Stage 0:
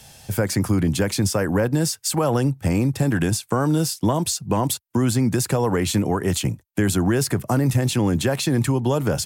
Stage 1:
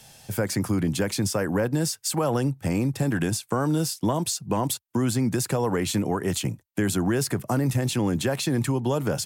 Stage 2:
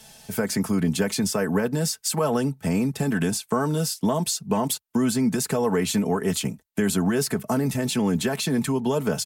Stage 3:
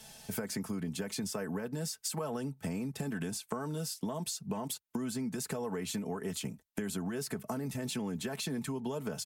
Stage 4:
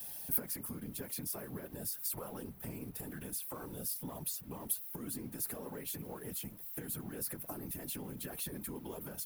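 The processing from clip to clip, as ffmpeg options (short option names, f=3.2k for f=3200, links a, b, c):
-af "equalizer=f=65:t=o:w=0.57:g=-14.5,volume=-3.5dB"
-af "aecho=1:1:4.6:0.69"
-af "acompressor=threshold=-30dB:ratio=6,volume=-4dB"
-af "aeval=exprs='val(0)+0.5*0.00501*sgn(val(0))':c=same,aexciter=amount=8.3:drive=5.1:freq=10k,afftfilt=real='hypot(re,im)*cos(2*PI*random(0))':imag='hypot(re,im)*sin(2*PI*random(1))':win_size=512:overlap=0.75,volume=-3.5dB"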